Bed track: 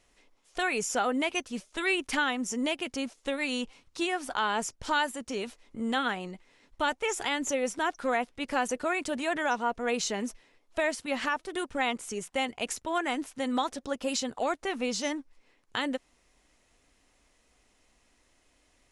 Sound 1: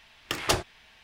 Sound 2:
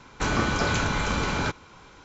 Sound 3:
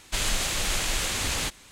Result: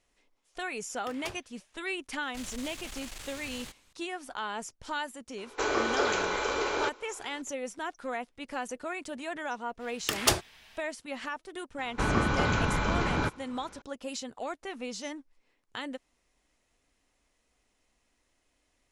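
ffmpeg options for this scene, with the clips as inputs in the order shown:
-filter_complex "[1:a]asplit=2[a][b];[2:a]asplit=2[c][d];[0:a]volume=-7dB[e];[3:a]aeval=exprs='clip(val(0),-1,0.0251)':c=same[f];[c]lowshelf=f=270:t=q:w=3:g=-14[g];[b]highshelf=f=5.5k:g=8.5[h];[d]highshelf=f=3.8k:g=-10.5[i];[a]atrim=end=1.03,asetpts=PTS-STARTPTS,volume=-16.5dB,afade=t=in:d=0.004:c=hsin,afade=t=out:st=1.026:d=0.004:c=hsin,adelay=760[j];[f]atrim=end=1.71,asetpts=PTS-STARTPTS,volume=-14.5dB,afade=t=in:d=0.004:c=hsin,afade=t=out:st=1.706:d=0.004:c=hsin,adelay=2220[k];[g]atrim=end=2.04,asetpts=PTS-STARTPTS,volume=-4dB,afade=t=in:d=0.004:c=hsin,afade=t=out:st=2.036:d=0.004:c=hsin,adelay=5380[l];[h]atrim=end=1.03,asetpts=PTS-STARTPTS,volume=-1.5dB,afade=t=in:d=0.05,afade=t=out:st=0.98:d=0.05,adelay=431298S[m];[i]atrim=end=2.04,asetpts=PTS-STARTPTS,volume=-1.5dB,afade=t=in:d=0.004:c=hsin,afade=t=out:st=2.036:d=0.004:c=hsin,adelay=519498S[n];[e][j][k][l][m][n]amix=inputs=6:normalize=0"

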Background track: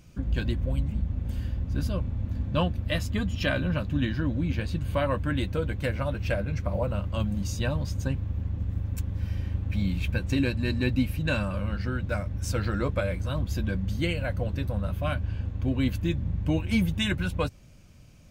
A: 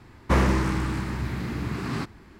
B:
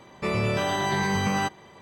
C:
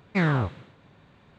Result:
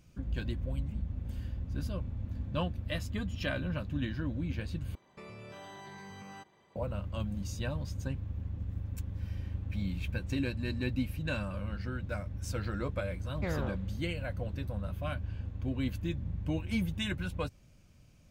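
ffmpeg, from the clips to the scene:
-filter_complex "[0:a]volume=-7.5dB[a];[2:a]acompressor=threshold=-29dB:ratio=6:attack=3.2:release=140:knee=1:detection=peak[b];[3:a]equalizer=f=530:t=o:w=0.6:g=12[c];[a]asplit=2[d][e];[d]atrim=end=4.954[f];[b]atrim=end=1.81,asetpts=PTS-STARTPTS,volume=-15.5dB[g];[e]atrim=start=6.756[h];[c]atrim=end=1.38,asetpts=PTS-STARTPTS,volume=-14.5dB,afade=t=in:d=0.004:c=hsin,afade=t=out:st=1.376:d=0.004:c=hsin,adelay=13270[i];[f][g]acrossfade=d=0.004:c1=hsin:c2=hsin[j];[j][h]acrossfade=d=0.004:c1=hsin:c2=hsin[k];[k][i]amix=inputs=2:normalize=0"

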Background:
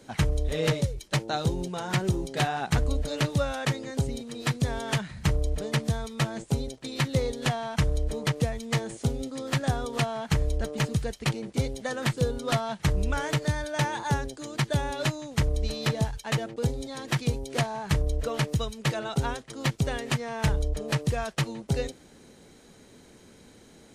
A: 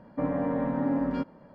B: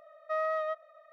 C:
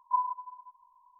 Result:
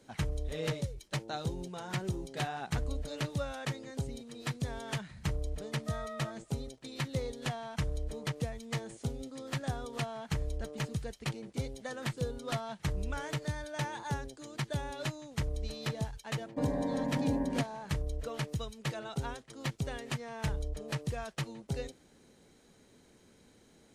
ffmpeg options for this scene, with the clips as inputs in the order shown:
-filter_complex "[0:a]volume=-9dB[a];[1:a]asuperstop=centerf=1300:order=4:qfactor=3.2[b];[2:a]atrim=end=1.12,asetpts=PTS-STARTPTS,volume=-11.5dB,afade=t=in:d=0.004:c=hsin,afade=t=out:st=1.116:d=0.004:c=hsin,adelay=245637S[c];[b]atrim=end=1.54,asetpts=PTS-STARTPTS,volume=-5dB,afade=t=in:d=0.004:c=hsin,afade=t=out:st=1.536:d=0.004:c=hsin,adelay=16390[d];[a][c][d]amix=inputs=3:normalize=0"

